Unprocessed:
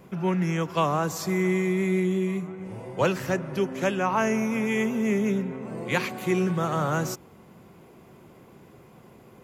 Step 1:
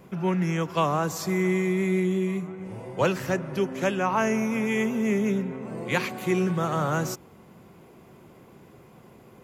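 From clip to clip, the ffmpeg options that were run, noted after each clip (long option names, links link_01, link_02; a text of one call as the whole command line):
ffmpeg -i in.wav -af anull out.wav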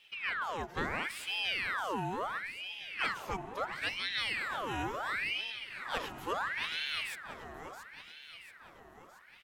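ffmpeg -i in.wav -af "aecho=1:1:679|1358|2037|2716|3395|4074:0.299|0.167|0.0936|0.0524|0.0294|0.0164,aeval=exprs='val(0)*sin(2*PI*1700*n/s+1700*0.7/0.73*sin(2*PI*0.73*n/s))':channel_layout=same,volume=-8.5dB" out.wav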